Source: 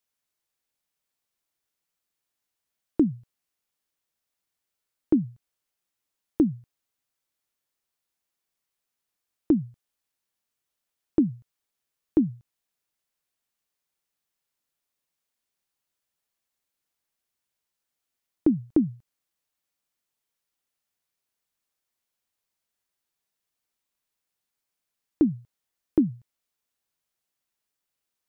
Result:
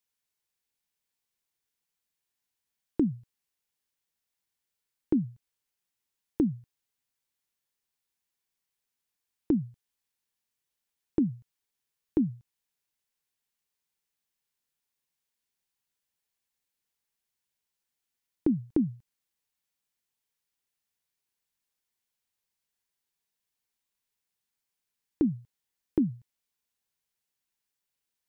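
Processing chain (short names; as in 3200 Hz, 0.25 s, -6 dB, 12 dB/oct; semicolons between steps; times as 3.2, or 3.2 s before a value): thirty-one-band EQ 315 Hz -5 dB, 630 Hz -8 dB, 1250 Hz -5 dB; gain -1.5 dB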